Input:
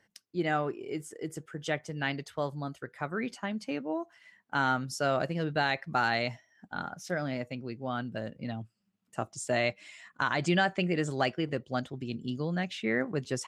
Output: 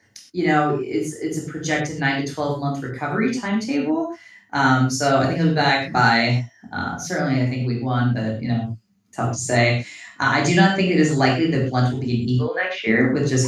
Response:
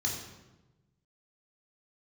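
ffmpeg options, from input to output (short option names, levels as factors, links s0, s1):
-filter_complex "[0:a]asettb=1/sr,asplit=3[s0][s1][s2];[s0]atrim=end=12.364[s3];[s1]atrim=start=12.36:end=12.87,asetpts=PTS-STARTPTS,afade=t=in:d=0.004:c=qsin,afade=t=out:st=0.506:d=0.004:c=qsin,highpass=f=480:w=0.5412,highpass=f=480:w=1.3066,equalizer=f=520:t=q:w=4:g=9,equalizer=f=790:t=q:w=4:g=-5,equalizer=f=1100:t=q:w=4:g=5,equalizer=f=1600:t=q:w=4:g=5,equalizer=f=2500:t=q:w=4:g=5,equalizer=f=4100:t=q:w=4:g=-9,lowpass=f=4400:w=0.5412,lowpass=f=4400:w=1.3066[s4];[s2]atrim=start=12.866[s5];[s3][s4]acrossfade=d=0.004:c1=hsin:c2=qsin[s6];[s6][s5]acrossfade=d=0.004:c1=qsin:c2=hsin[s7];[1:a]atrim=start_sample=2205,afade=t=out:st=0.18:d=0.01,atrim=end_sample=8379[s8];[s7][s8]afir=irnorm=-1:irlink=0,volume=2.11"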